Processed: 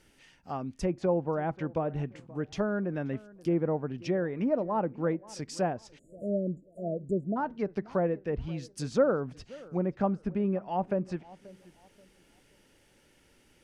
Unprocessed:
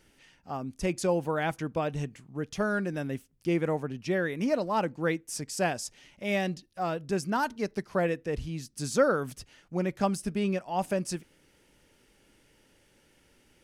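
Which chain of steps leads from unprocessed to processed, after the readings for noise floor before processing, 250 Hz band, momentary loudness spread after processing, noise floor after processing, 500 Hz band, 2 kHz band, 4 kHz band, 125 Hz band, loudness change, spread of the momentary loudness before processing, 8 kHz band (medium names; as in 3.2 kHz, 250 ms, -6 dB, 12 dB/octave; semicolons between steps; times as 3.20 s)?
-65 dBFS, 0.0 dB, 10 LU, -64 dBFS, -0.5 dB, -9.0 dB, -8.0 dB, 0.0 dB, -1.0 dB, 9 LU, -11.0 dB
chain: low-pass that closes with the level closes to 980 Hz, closed at -25.5 dBFS; tape echo 531 ms, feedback 33%, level -20 dB, low-pass 2.1 kHz; spectral selection erased 5.99–7.37 s, 700–6800 Hz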